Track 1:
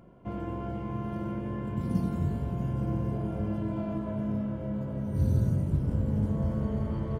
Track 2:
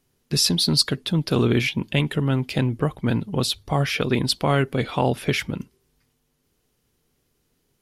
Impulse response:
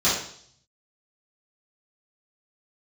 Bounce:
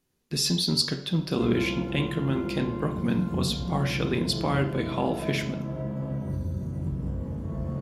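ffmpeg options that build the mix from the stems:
-filter_complex "[0:a]acompressor=threshold=0.0282:ratio=10,adelay=1150,volume=1.12,asplit=2[s0][s1];[s1]volume=0.15[s2];[1:a]volume=0.422,asplit=2[s3][s4];[s4]volume=0.0891[s5];[2:a]atrim=start_sample=2205[s6];[s2][s5]amix=inputs=2:normalize=0[s7];[s7][s6]afir=irnorm=-1:irlink=0[s8];[s0][s3][s8]amix=inputs=3:normalize=0"

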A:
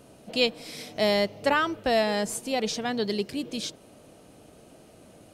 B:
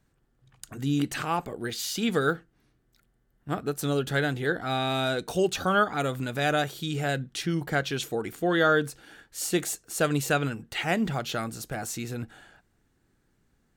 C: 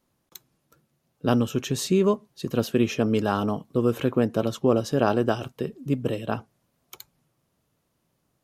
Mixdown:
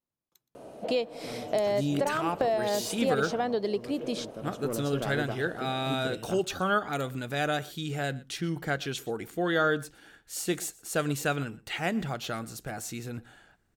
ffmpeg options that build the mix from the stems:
-filter_complex "[0:a]equalizer=f=610:w=0.52:g=14,acompressor=threshold=0.0794:ratio=5,adelay=550,volume=0.631[s0];[1:a]adelay=950,volume=0.668,asplit=2[s1][s2];[s2]volume=0.0794[s3];[2:a]asoftclip=type=tanh:threshold=0.2,volume=0.316,afade=t=in:st=4.16:d=0.65:silence=0.298538,asplit=3[s4][s5][s6];[s5]volume=0.0841[s7];[s6]apad=whole_len=259680[s8];[s0][s8]sidechaincompress=threshold=0.0112:ratio=8:attack=12:release=110[s9];[s3][s7]amix=inputs=2:normalize=0,aecho=0:1:120:1[s10];[s9][s1][s4][s10]amix=inputs=4:normalize=0"

